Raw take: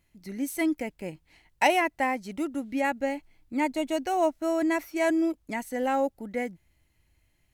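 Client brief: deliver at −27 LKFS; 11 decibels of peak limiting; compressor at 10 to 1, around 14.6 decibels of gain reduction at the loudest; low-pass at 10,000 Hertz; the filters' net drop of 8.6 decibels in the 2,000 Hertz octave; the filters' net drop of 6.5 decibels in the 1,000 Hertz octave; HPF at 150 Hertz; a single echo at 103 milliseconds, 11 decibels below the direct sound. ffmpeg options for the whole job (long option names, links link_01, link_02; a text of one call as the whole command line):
ffmpeg -i in.wav -af "highpass=150,lowpass=10000,equalizer=frequency=1000:width_type=o:gain=-8,equalizer=frequency=2000:width_type=o:gain=-8,acompressor=threshold=-38dB:ratio=10,alimiter=level_in=11.5dB:limit=-24dB:level=0:latency=1,volume=-11.5dB,aecho=1:1:103:0.282,volume=17.5dB" out.wav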